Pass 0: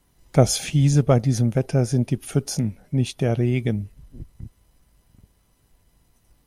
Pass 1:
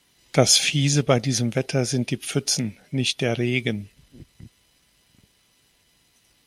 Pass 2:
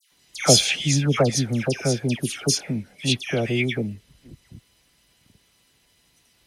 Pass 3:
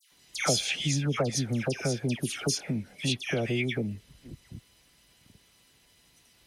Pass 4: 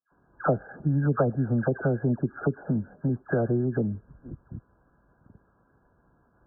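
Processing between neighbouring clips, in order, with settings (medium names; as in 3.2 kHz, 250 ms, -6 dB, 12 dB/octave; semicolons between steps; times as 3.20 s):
frequency weighting D
phase dispersion lows, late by 117 ms, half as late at 1.7 kHz
compression 2.5:1, threshold -28 dBFS, peak gain reduction 12.5 dB
brick-wall FIR low-pass 1.7 kHz; trim +4.5 dB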